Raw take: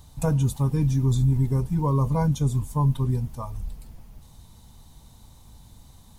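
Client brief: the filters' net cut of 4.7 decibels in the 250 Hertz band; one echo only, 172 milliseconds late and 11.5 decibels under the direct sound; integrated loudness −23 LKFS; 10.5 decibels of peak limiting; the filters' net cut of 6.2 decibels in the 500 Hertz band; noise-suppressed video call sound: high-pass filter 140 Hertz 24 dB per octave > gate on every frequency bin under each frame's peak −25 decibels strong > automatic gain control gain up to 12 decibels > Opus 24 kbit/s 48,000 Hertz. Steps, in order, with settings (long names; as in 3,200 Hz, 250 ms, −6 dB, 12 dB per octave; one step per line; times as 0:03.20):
parametric band 250 Hz −5 dB
parametric band 500 Hz −6 dB
brickwall limiter −24.5 dBFS
high-pass filter 140 Hz 24 dB per octave
single-tap delay 172 ms −11.5 dB
gate on every frequency bin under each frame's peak −25 dB strong
automatic gain control gain up to 12 dB
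level +12.5 dB
Opus 24 kbit/s 48,000 Hz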